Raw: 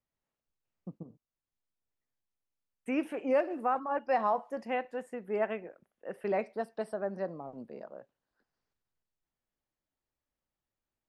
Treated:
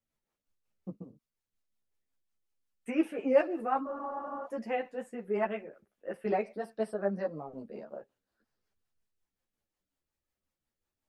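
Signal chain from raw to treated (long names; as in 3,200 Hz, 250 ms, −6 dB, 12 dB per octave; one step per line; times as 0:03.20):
rotating-speaker cabinet horn 5.5 Hz
frozen spectrum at 0:03.88, 0.56 s
string-ensemble chorus
level +6.5 dB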